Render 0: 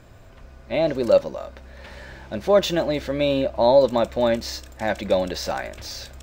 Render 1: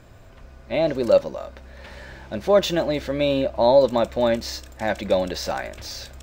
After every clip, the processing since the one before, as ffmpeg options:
-af anull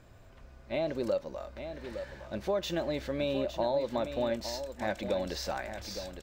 -af "acompressor=threshold=-19dB:ratio=6,aecho=1:1:861:0.335,volume=-8dB"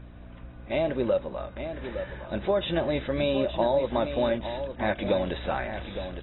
-af "aeval=exprs='val(0)+0.00316*(sin(2*PI*60*n/s)+sin(2*PI*2*60*n/s)/2+sin(2*PI*3*60*n/s)/3+sin(2*PI*4*60*n/s)/4+sin(2*PI*5*60*n/s)/5)':c=same,volume=5.5dB" -ar 22050 -c:a aac -b:a 16k

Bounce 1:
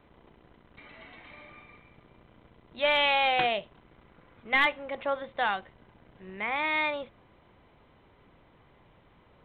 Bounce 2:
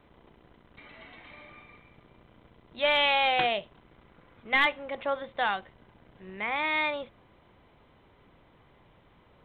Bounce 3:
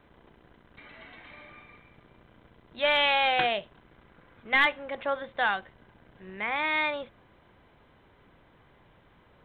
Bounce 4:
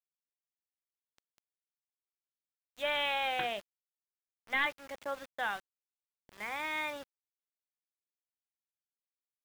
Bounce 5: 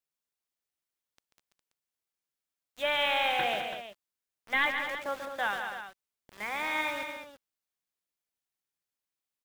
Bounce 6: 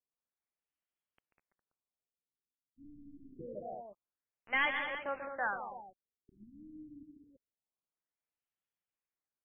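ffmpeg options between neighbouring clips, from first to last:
-af "equalizer=f=3.4k:w=5:g=2"
-af "equalizer=f=1.6k:w=4.9:g=5.5"
-af "aeval=exprs='val(0)*gte(abs(val(0)),0.0141)':c=same,volume=-8.5dB"
-af "aecho=1:1:139|211|332:0.422|0.355|0.266,volume=3.5dB"
-af "afftfilt=real='re*lt(b*sr/1024,310*pow(3500/310,0.5+0.5*sin(2*PI*0.26*pts/sr)))':imag='im*lt(b*sr/1024,310*pow(3500/310,0.5+0.5*sin(2*PI*0.26*pts/sr)))':win_size=1024:overlap=0.75,volume=-3.5dB"

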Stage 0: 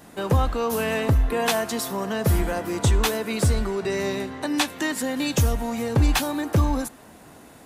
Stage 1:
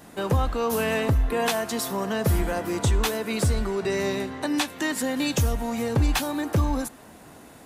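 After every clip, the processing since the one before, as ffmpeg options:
-af "alimiter=limit=-13.5dB:level=0:latency=1:release=349"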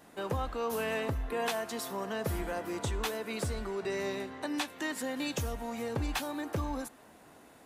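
-af "bass=f=250:g=-6,treble=f=4k:g=-3,volume=-7.5dB"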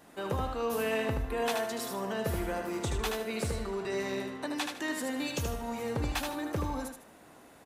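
-af "aecho=1:1:77|154|231|308:0.562|0.157|0.0441|0.0123"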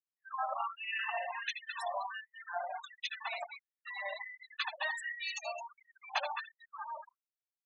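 -filter_complex "[0:a]asplit=6[a][b][c][d][e][f];[b]adelay=214,afreqshift=48,volume=-4.5dB[g];[c]adelay=428,afreqshift=96,volume=-13.1dB[h];[d]adelay=642,afreqshift=144,volume=-21.8dB[i];[e]adelay=856,afreqshift=192,volume=-30.4dB[j];[f]adelay=1070,afreqshift=240,volume=-39dB[k];[a][g][h][i][j][k]amix=inputs=6:normalize=0,afftfilt=real='re*gte(hypot(re,im),0.0316)':imag='im*gte(hypot(re,im),0.0316)':win_size=1024:overlap=0.75,afftfilt=real='re*gte(b*sr/1024,550*pow(1900/550,0.5+0.5*sin(2*PI*1.4*pts/sr)))':imag='im*gte(b*sr/1024,550*pow(1900/550,0.5+0.5*sin(2*PI*1.4*pts/sr)))':win_size=1024:overlap=0.75,volume=2dB"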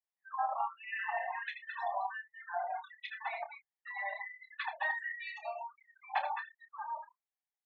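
-filter_complex "[0:a]highpass=f=470:w=0.5412,highpass=f=470:w=1.3066,equalizer=f=550:t=q:w=4:g=-7,equalizer=f=800:t=q:w=4:g=7,equalizer=f=1.3k:t=q:w=4:g=-6,equalizer=f=1.9k:t=q:w=4:g=3,equalizer=f=2.8k:t=q:w=4:g=-10,lowpass=f=3k:w=0.5412,lowpass=f=3k:w=1.3066,asplit=2[a][b];[b]adelay=29,volume=-10dB[c];[a][c]amix=inputs=2:normalize=0"

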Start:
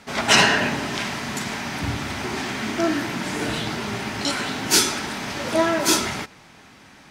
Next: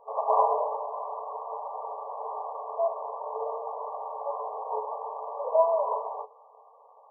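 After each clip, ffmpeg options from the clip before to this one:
-af "afftfilt=real='re*between(b*sr/4096,430,1200)':imag='im*between(b*sr/4096,430,1200)':win_size=4096:overlap=0.75"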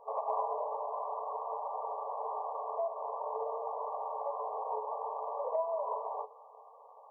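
-af "acompressor=threshold=-34dB:ratio=3"

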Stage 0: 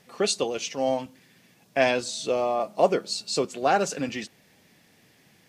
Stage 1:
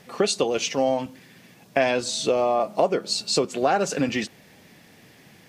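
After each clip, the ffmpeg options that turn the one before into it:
-af "equalizer=f=8.7k:w=0.31:g=-3.5,acompressor=threshold=-27dB:ratio=4,volume=8.5dB"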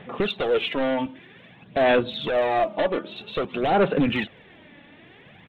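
-af "aresample=8000,asoftclip=type=hard:threshold=-22.5dB,aresample=44100,aphaser=in_gain=1:out_gain=1:delay=3.5:decay=0.51:speed=0.52:type=sinusoidal,volume=2dB"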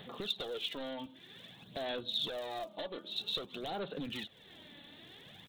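-af "acompressor=threshold=-41dB:ratio=2,aexciter=amount=7.1:drive=8.2:freq=3.6k,volume=-7.5dB"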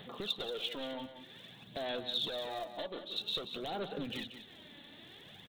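-af "aecho=1:1:183|366|549:0.316|0.0569|0.0102"

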